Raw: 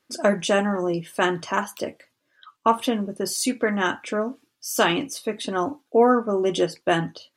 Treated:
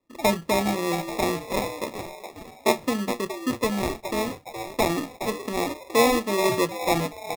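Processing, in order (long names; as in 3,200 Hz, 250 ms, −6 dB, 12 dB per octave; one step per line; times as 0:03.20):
low-pass filter 1,400 Hz 24 dB per octave
on a send: echo with shifted repeats 418 ms, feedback 44%, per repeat +130 Hz, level −9 dB
on the sum: decimation without filtering 29×
level −2 dB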